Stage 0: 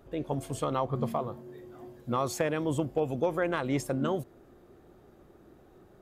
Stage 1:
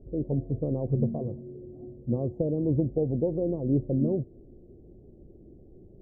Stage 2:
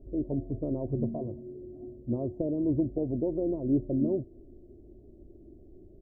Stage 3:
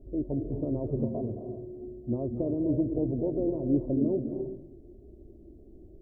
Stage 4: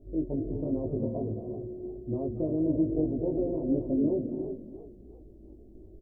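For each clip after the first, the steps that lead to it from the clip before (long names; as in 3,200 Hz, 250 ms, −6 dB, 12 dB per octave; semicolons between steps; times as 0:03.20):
inverse Chebyshev low-pass filter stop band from 1,400 Hz, stop band 50 dB; spectral tilt −2.5 dB per octave
comb filter 3.1 ms, depth 52%; level −2.5 dB
convolution reverb RT60 0.75 s, pre-delay 217 ms, DRR 6 dB
double-tracking delay 19 ms −2 dB; feedback echo with a swinging delay time 341 ms, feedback 31%, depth 180 cents, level −13 dB; level −2.5 dB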